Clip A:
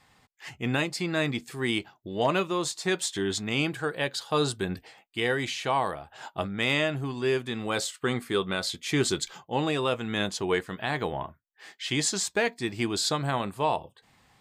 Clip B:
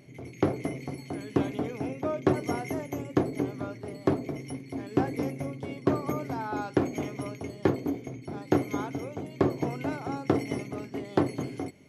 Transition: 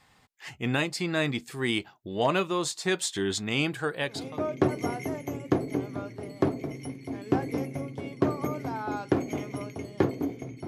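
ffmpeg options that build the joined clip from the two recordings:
-filter_complex "[0:a]apad=whole_dur=10.67,atrim=end=10.67,atrim=end=4.4,asetpts=PTS-STARTPTS[a];[1:a]atrim=start=1.61:end=8.32,asetpts=PTS-STARTPTS[b];[a][b]acrossfade=d=0.44:c1=tri:c2=tri"

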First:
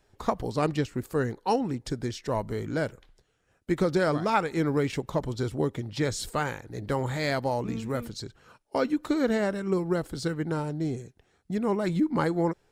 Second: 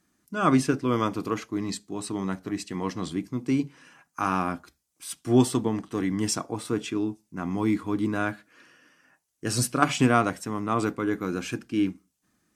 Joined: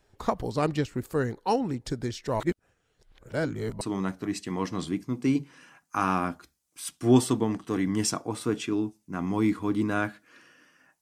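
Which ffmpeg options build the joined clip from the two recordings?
-filter_complex "[0:a]apad=whole_dur=11.01,atrim=end=11.01,asplit=2[a][b];[a]atrim=end=2.402[c];[b]atrim=start=2.398:end=3.812,asetpts=PTS-STARTPTS,areverse[d];[1:a]atrim=start=2.048:end=9.25[e];[c][d]acrossfade=d=0.004:c1=hsin:c2=hsin[f];[f][e]acrossfade=d=0.004:c1=hsin:c2=hsin"

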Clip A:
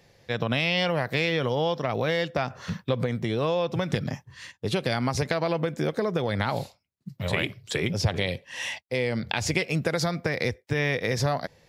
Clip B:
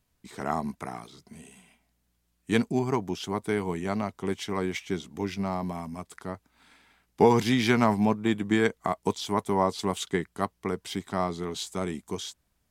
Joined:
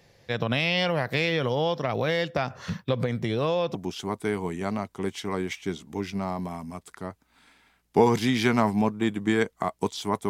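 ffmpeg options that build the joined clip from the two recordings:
-filter_complex "[0:a]apad=whole_dur=10.29,atrim=end=10.29,atrim=end=3.752[a];[1:a]atrim=start=2.988:end=9.53[b];[a][b]acrossfade=d=0.004:c1=hsin:c2=hsin"

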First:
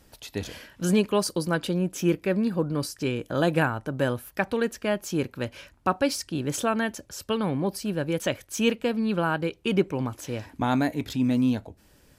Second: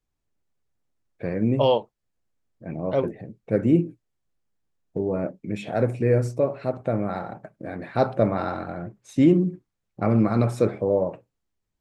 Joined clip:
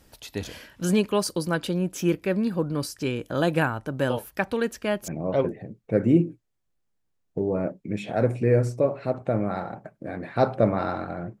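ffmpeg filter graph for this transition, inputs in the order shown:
-filter_complex "[1:a]asplit=2[a][b];[0:a]apad=whole_dur=11.4,atrim=end=11.4,atrim=end=5.082[c];[b]atrim=start=2.668:end=8.99[d];[a]atrim=start=1.69:end=2.67,asetpts=PTS-STARTPTS,volume=-9dB,afade=t=in:d=0.004:c=hsin,afade=t=out:st=0.976:d=0.004:c=hsin,adelay=4100[e];[c][d]acrossfade=d=0.004:c1=hsin:c2=hsin[f];[f][e]amix=inputs=2:normalize=0"

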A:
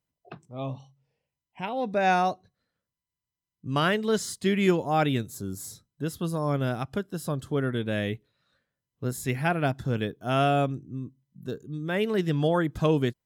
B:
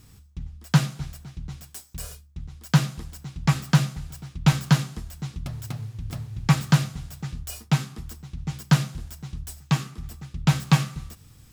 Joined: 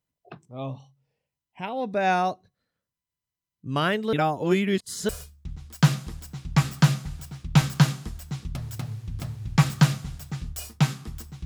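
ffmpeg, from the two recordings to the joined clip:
-filter_complex "[0:a]apad=whole_dur=11.45,atrim=end=11.45,asplit=2[a][b];[a]atrim=end=4.132[c];[b]atrim=start=4.128:end=5.092,asetpts=PTS-STARTPTS,areverse[d];[1:a]atrim=start=1.998:end=8.36[e];[c][d]acrossfade=d=0.004:c1=hsin:c2=hsin[f];[f][e]acrossfade=d=0.004:c1=hsin:c2=hsin"

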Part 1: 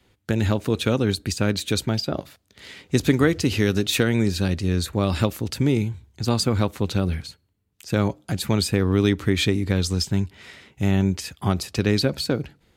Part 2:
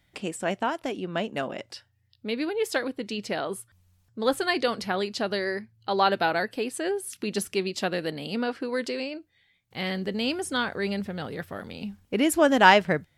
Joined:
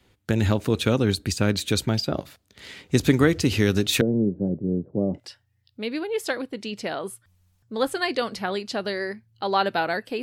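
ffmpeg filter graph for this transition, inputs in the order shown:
-filter_complex "[0:a]asettb=1/sr,asplit=3[a][b][c];[a]atrim=end=4.014[d];[b]atrim=start=4.01:end=5.2,asetpts=PTS-STARTPTS,afade=t=in:d=0.004:c=qsin,afade=t=out:st=1.186:d=0.004:c=qsin,asuperpass=centerf=280:order=8:qfactor=0.56[e];[c]atrim=start=5.196[f];[d][e]acrossfade=d=0.004:c1=hsin:c2=qsin[g];[g][f]acrossfade=d=0.004:c1=qsin:c2=hsin,apad=whole_dur=10.22,atrim=end=10.22,atrim=end=5.2,asetpts=PTS-STARTPTS[h];[1:a]atrim=start=1.6:end=6.68,asetpts=PTS-STARTPTS[i];[h][i]acrossfade=d=0.06:c1=tri:c2=tri"

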